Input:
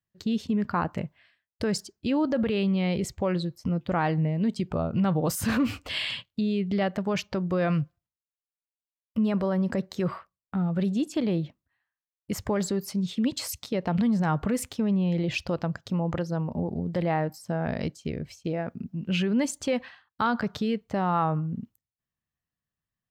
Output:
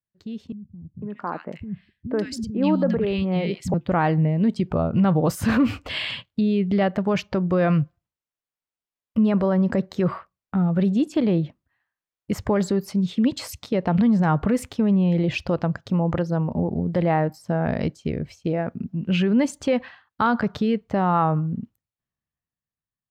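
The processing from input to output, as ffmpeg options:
-filter_complex "[0:a]asettb=1/sr,asplit=3[a][b][c];[a]atrim=end=0.524[d];[b]atrim=start=0.52:end=3.74,asetpts=PTS-STARTPTS,afade=t=in:d=0.004:c=qsin,afade=t=out:st=3.216:d=0.004:c=qsin,acrossover=split=200|1700[e][f][g];[f]adelay=500[h];[g]adelay=580[i];[e][h][i]amix=inputs=3:normalize=0,atrim=end_sample=142002[j];[c]atrim=start=3.736[k];[d][j]acrossfade=d=0.004:c1=hsin:c2=qsin[l];[l][k]acrossfade=d=0.004:c1=qsin:c2=hsin,highshelf=f=3.8k:g=-10.5,dynaudnorm=f=220:g=13:m=13dB,volume=-6.5dB"

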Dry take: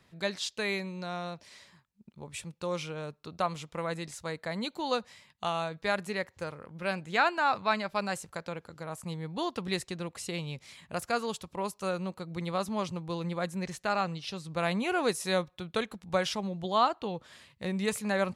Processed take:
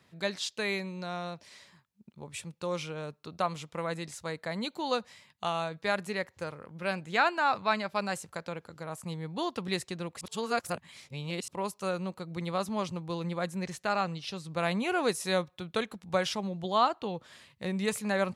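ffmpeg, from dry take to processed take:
-filter_complex "[0:a]asplit=3[a][b][c];[a]atrim=end=10.212[d];[b]atrim=start=10.208:end=11.482,asetpts=PTS-STARTPTS,areverse[e];[c]atrim=start=11.478[f];[d][e]acrossfade=d=0.004:c1=hsin:c2=hsin[g];[g][f]acrossfade=d=0.004:c1=hsin:c2=hsin,highpass=75"

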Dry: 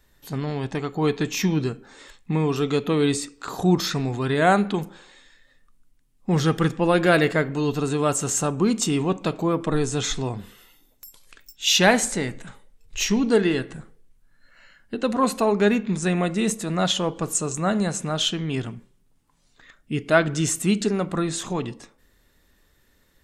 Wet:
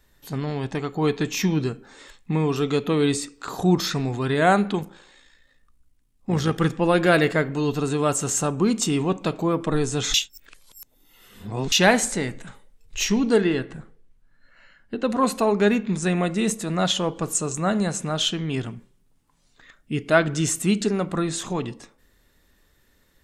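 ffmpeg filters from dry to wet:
-filter_complex "[0:a]asplit=3[a][b][c];[a]afade=t=out:st=4.78:d=0.02[d];[b]tremolo=f=57:d=0.462,afade=t=in:st=4.78:d=0.02,afade=t=out:st=6.58:d=0.02[e];[c]afade=t=in:st=6.58:d=0.02[f];[d][e][f]amix=inputs=3:normalize=0,asettb=1/sr,asplit=3[g][h][i];[g]atrim=end=13.434[j];[h]atrim=start=13.43:end=15.1,asetpts=PTS-STARTPTS,afade=t=in:d=0.004:c=qsin,afade=t=out:st=1.666:d=0.004:c=qsin,lowpass=f=3.6k:p=1[k];[i]atrim=start=15.096[l];[j][k]acrossfade=d=0.004:c1=hsin:c2=qsin[m];[m][l]acrossfade=d=0.004:c1=qsin:c2=hsin,asplit=3[n][o][p];[n]atrim=end=10.142[q];[o]atrim=start=10.138:end=11.722,asetpts=PTS-STARTPTS,areverse[r];[p]atrim=start=11.718[s];[q][r]acrossfade=d=0.004:c1=hsin:c2=hsin[t];[t][s]acrossfade=d=0.004:c1=hsin:c2=hsin"

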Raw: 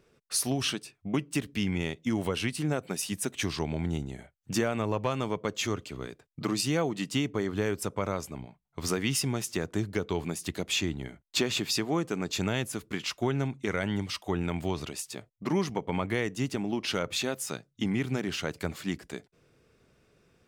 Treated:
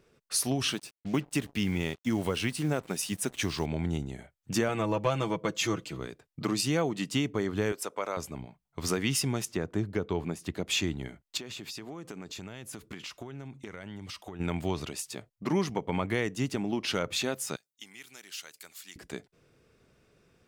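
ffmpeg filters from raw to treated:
-filter_complex "[0:a]asettb=1/sr,asplit=3[a][b][c];[a]atrim=end=0.674[d];[b]atrim=start=0.67:end=3.66,asetpts=PTS-STARTPTS,afade=t=in:d=0.004:c=qsin,afade=t=out:st=2.986:d=0.004:c=qsin,acrusher=bits=7:mix=0:aa=0.5[e];[c]atrim=start=3.656[f];[d][e]acrossfade=d=0.004:c1=hsin:c2=qsin[g];[g][f]acrossfade=d=0.004:c1=qsin:c2=hsin,asettb=1/sr,asplit=3[h][i][j];[h]atrim=end=4.684[k];[i]atrim=start=4.68:end=6,asetpts=PTS-STARTPTS,afade=t=in:d=0.004:c=qsin,afade=t=out:st=1.316:d=0.004:c=qsin,aecho=1:1:6.1:0.65,atrim=end_sample=58212[l];[j]atrim=start=5.996[m];[k][l]acrossfade=d=0.004:c1=hsin:c2=qsin[n];[n][m]acrossfade=d=0.004:c1=qsin:c2=hsin,asettb=1/sr,asplit=3[o][p][q];[o]atrim=end=7.724[r];[p]atrim=start=7.72:end=8.17,asetpts=PTS-STARTPTS,afade=t=in:d=0.004:c=qsin,afade=t=out:st=0.446:d=0.004:c=qsin,highpass=450[s];[q]atrim=start=8.166[t];[r][s]acrossfade=d=0.004:c1=hsin:c2=qsin[u];[u][t]acrossfade=d=0.004:c1=qsin:c2=hsin,asettb=1/sr,asplit=3[v][w][x];[v]atrim=end=9.454[y];[w]atrim=start=9.45:end=10.67,asetpts=PTS-STARTPTS,afade=t=in:d=0.004:c=qsin,afade=t=out:st=1.216:d=0.004:c=qsin,highshelf=f=2.9k:g=-10.5[z];[x]atrim=start=10.666[aa];[y][z]acrossfade=d=0.004:c1=hsin:c2=qsin[ab];[ab][aa]acrossfade=d=0.004:c1=qsin:c2=hsin,asplit=3[ac][ad][ae];[ac]afade=t=out:st=11.36:d=0.02[af];[ad]acompressor=threshold=-37dB:ratio=12:attack=3.2:release=140:knee=1:detection=peak,afade=t=in:st=11.36:d=0.02,afade=t=out:st=14.39:d=0.02[ag];[ae]afade=t=in:st=14.39:d=0.02[ah];[af][ag][ah]amix=inputs=3:normalize=0,asettb=1/sr,asplit=3[ai][aj][ak];[ai]atrim=end=17.564[al];[aj]atrim=start=17.56:end=18.96,asetpts=PTS-STARTPTS,afade=t=in:d=0.004:c=qsin,afade=t=out:st=1.396:d=0.004:c=qsin,aderivative[am];[ak]atrim=start=18.956[an];[al][am]acrossfade=d=0.004:c1=hsin:c2=qsin[ao];[ao][an]acrossfade=d=0.004:c1=qsin:c2=hsin"

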